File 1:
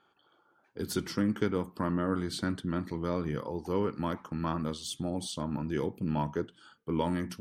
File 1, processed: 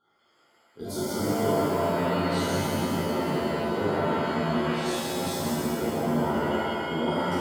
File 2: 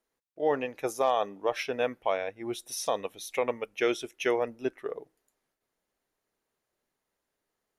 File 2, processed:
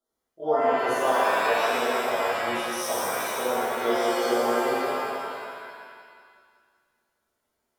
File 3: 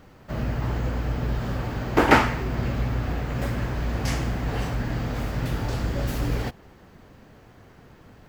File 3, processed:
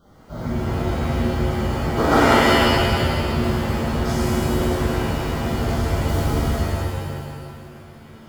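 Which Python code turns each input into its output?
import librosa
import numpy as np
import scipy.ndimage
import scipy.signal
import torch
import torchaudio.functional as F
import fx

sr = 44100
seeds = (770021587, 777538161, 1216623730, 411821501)

p1 = scipy.signal.sosfilt(scipy.signal.ellip(3, 1.0, 40, [1500.0, 3200.0], 'bandstop', fs=sr, output='sos'), x)
p2 = p1 + fx.echo_feedback(p1, sr, ms=185, feedback_pct=53, wet_db=-7.0, dry=0)
p3 = fx.rev_shimmer(p2, sr, seeds[0], rt60_s=1.6, semitones=7, shimmer_db=-2, drr_db=-9.0)
y = p3 * 10.0 ** (-7.5 / 20.0)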